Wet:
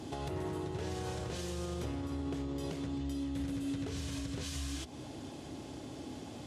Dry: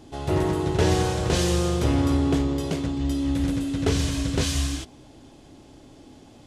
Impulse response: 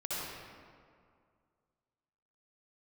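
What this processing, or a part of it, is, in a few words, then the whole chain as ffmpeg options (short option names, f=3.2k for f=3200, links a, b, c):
podcast mastering chain: -af "highpass=f=64:w=0.5412,highpass=f=64:w=1.3066,acompressor=threshold=-35dB:ratio=4,alimiter=level_in=9dB:limit=-24dB:level=0:latency=1:release=228,volume=-9dB,volume=4dB" -ar 48000 -c:a libmp3lame -b:a 96k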